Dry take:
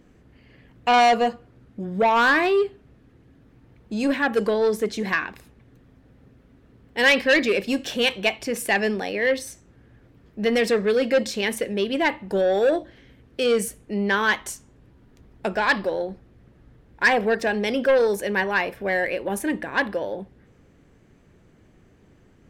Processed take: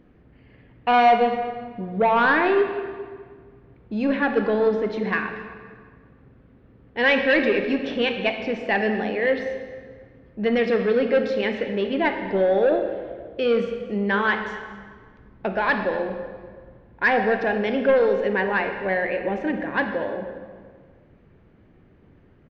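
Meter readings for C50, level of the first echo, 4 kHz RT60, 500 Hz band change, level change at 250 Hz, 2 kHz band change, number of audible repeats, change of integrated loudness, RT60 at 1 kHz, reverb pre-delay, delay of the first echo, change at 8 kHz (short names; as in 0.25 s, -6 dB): 6.5 dB, -19.0 dB, 1.3 s, +1.0 dB, +1.0 dB, -1.0 dB, 1, 0.0 dB, 1.7 s, 25 ms, 0.237 s, under -20 dB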